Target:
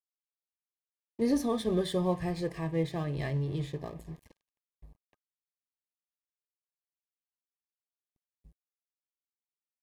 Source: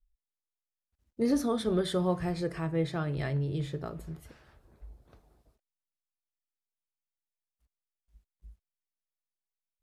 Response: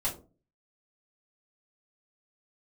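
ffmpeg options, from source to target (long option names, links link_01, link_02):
-af "aeval=exprs='sgn(val(0))*max(abs(val(0))-0.00335,0)':channel_layout=same,asuperstop=centerf=1400:order=20:qfactor=4.4"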